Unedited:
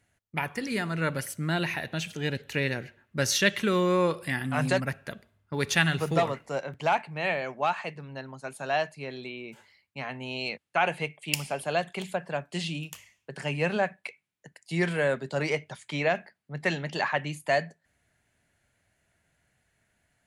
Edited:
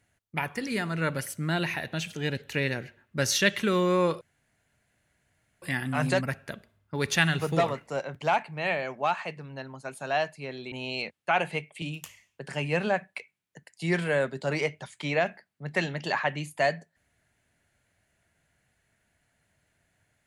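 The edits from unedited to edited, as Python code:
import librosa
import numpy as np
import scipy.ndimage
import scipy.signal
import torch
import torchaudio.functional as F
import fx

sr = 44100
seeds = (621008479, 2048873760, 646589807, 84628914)

y = fx.edit(x, sr, fx.insert_room_tone(at_s=4.21, length_s=1.41),
    fx.cut(start_s=9.31, length_s=0.88),
    fx.cut(start_s=11.29, length_s=1.42), tone=tone)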